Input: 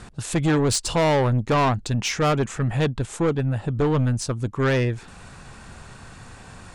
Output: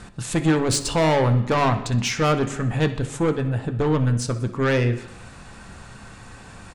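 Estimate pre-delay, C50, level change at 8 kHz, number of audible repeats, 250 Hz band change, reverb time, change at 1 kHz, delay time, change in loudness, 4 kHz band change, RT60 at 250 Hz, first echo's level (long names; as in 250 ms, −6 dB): 3 ms, 11.5 dB, 0.0 dB, 2, +1.0 dB, 0.80 s, +0.5 dB, 62 ms, +0.5 dB, +0.5 dB, 0.80 s, −16.5 dB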